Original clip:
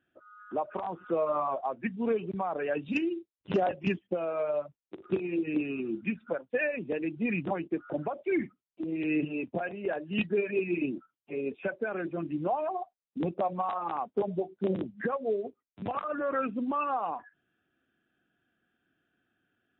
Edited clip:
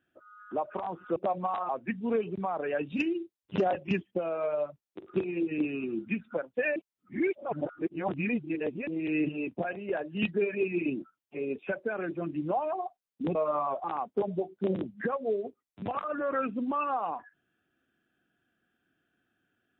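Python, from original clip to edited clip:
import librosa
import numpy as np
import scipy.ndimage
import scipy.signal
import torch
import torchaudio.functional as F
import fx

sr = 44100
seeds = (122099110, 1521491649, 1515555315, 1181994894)

y = fx.edit(x, sr, fx.swap(start_s=1.16, length_s=0.49, other_s=13.31, other_length_s=0.53),
    fx.reverse_span(start_s=6.72, length_s=2.11), tone=tone)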